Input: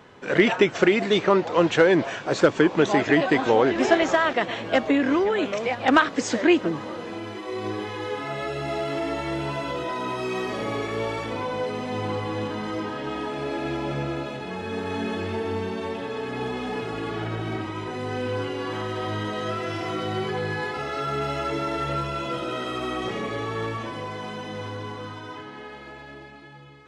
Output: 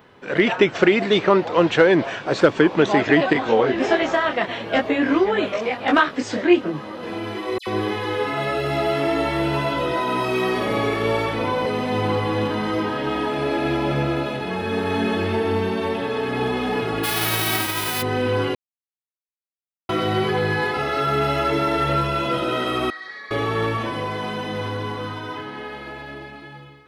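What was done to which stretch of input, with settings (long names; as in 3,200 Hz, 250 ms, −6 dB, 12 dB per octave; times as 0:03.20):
0:03.33–0:07.03: micro pitch shift up and down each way 17 cents
0:07.58–0:11.66: all-pass dispersion lows, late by 89 ms, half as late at 2,400 Hz
0:17.03–0:18.01: spectral envelope flattened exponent 0.3
0:18.55–0:19.89: silence
0:22.90–0:23.31: pair of resonant band-passes 2,800 Hz, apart 1.2 octaves
whole clip: parametric band 7,100 Hz −14 dB 0.95 octaves; automatic gain control gain up to 8 dB; high-shelf EQ 5,400 Hz +11.5 dB; level −1.5 dB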